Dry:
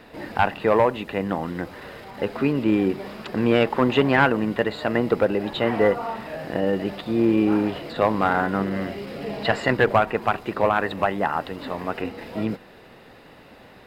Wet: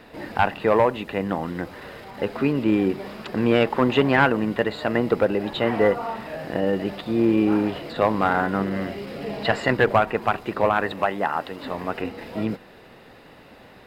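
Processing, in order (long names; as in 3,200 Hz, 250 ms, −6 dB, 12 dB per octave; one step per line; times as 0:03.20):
0:10.92–0:11.64: low-shelf EQ 150 Hz −9.5 dB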